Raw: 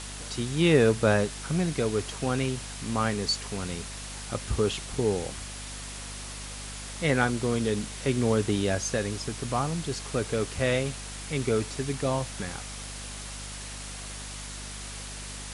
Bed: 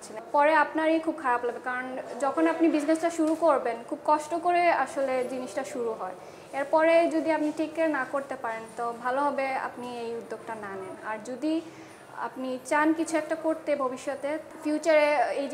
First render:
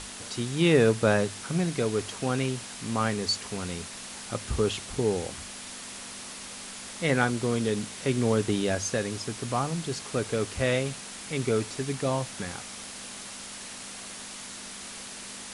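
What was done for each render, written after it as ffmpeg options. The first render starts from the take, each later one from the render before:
-af "bandreject=f=50:t=h:w=6,bandreject=f=100:t=h:w=6,bandreject=f=150:t=h:w=6"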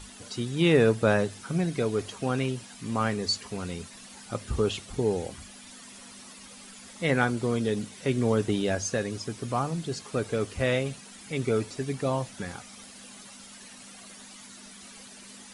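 -af "afftdn=nr=11:nf=-41"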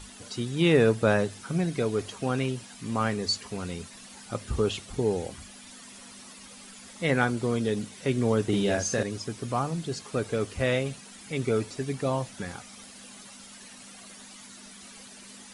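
-filter_complex "[0:a]asettb=1/sr,asplit=3[a][b][c];[a]atrim=end=8.484[d];[b]atrim=start=8.48:end=9.03,asetpts=PTS-STARTPTS,afade=t=in:d=0.004:c=qsin,afade=t=out:st=0.546:d=0.004:c=qsin,asplit=2[e][f];[f]adelay=45,volume=-3dB[g];[e][g]amix=inputs=2:normalize=0,atrim=end_sample=24255[h];[c]atrim=start=9.026[i];[d][h]acrossfade=d=0.004:c1=hsin:c2=qsin[j];[j][i]acrossfade=d=0.004:c1=qsin:c2=hsin"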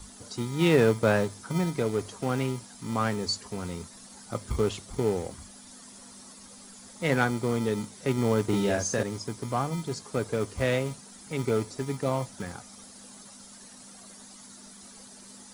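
-filter_complex "[0:a]acrossover=split=220|3300[a][b][c];[a]acrusher=samples=40:mix=1:aa=0.000001[d];[b]adynamicsmooth=sensitivity=4:basefreq=1.7k[e];[d][e][c]amix=inputs=3:normalize=0"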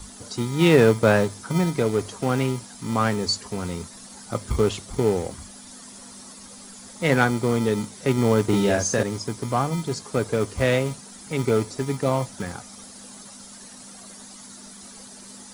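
-af "volume=5.5dB"

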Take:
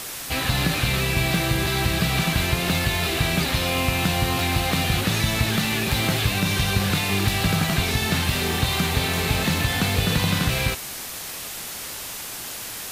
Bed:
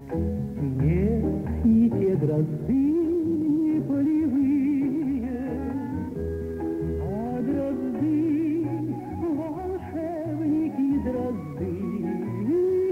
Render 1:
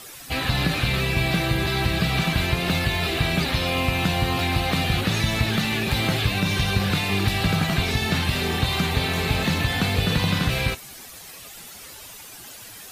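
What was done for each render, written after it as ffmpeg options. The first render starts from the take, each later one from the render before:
-af "afftdn=nr=11:nf=-34"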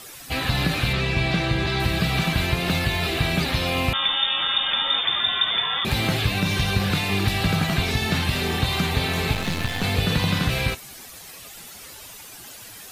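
-filter_complex "[0:a]asettb=1/sr,asplit=3[a][b][c];[a]atrim=end=0.934[d];[b]atrim=start=0.93:end=1.8,asetpts=PTS-STARTPTS,afade=t=in:d=0.004:c=qsin,afade=t=out:st=0.866:d=0.004:c=qsin,lowpass=6.3k[e];[c]atrim=start=1.796[f];[d][e]acrossfade=d=0.004:c1=hsin:c2=qsin[g];[g][f]acrossfade=d=0.004:c1=qsin:c2=hsin,asettb=1/sr,asplit=3[h][i][j];[h]atrim=end=3.934[k];[i]atrim=start=3.93:end=5.85,asetpts=PTS-STARTPTS,afade=t=in:d=0.004:c=qsin,afade=t=out:st=1.916:d=0.004:c=qsin,lowpass=f=3.1k:t=q:w=0.5098,lowpass=f=3.1k:t=q:w=0.6013,lowpass=f=3.1k:t=q:w=0.9,lowpass=f=3.1k:t=q:w=2.563,afreqshift=-3700[l];[j]atrim=start=5.846[m];[k][l]acrossfade=d=0.004:c1=hsin:c2=qsin[n];[n][m]acrossfade=d=0.004:c1=qsin:c2=hsin,asettb=1/sr,asplit=3[o][p][q];[o]atrim=end=9.334[r];[p]atrim=start=9.33:end=9.84,asetpts=PTS-STARTPTS,afade=t=in:d=0.004:c=qsin,afade=t=out:st=0.506:d=0.004:c=qsin,aeval=exprs='if(lt(val(0),0),0.251*val(0),val(0))':c=same[s];[q]atrim=start=9.836[t];[r][s]acrossfade=d=0.004:c1=hsin:c2=qsin[u];[u][t]acrossfade=d=0.004:c1=qsin:c2=hsin"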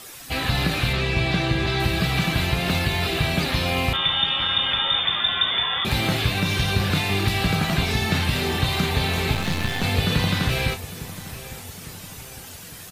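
-filter_complex "[0:a]asplit=2[a][b];[b]adelay=33,volume=-10.5dB[c];[a][c]amix=inputs=2:normalize=0,asplit=2[d][e];[e]adelay=854,lowpass=f=2.4k:p=1,volume=-15dB,asplit=2[f][g];[g]adelay=854,lowpass=f=2.4k:p=1,volume=0.55,asplit=2[h][i];[i]adelay=854,lowpass=f=2.4k:p=1,volume=0.55,asplit=2[j][k];[k]adelay=854,lowpass=f=2.4k:p=1,volume=0.55,asplit=2[l][m];[m]adelay=854,lowpass=f=2.4k:p=1,volume=0.55[n];[d][f][h][j][l][n]amix=inputs=6:normalize=0"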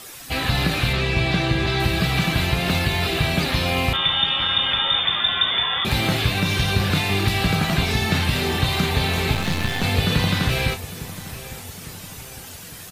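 -af "volume=1.5dB"

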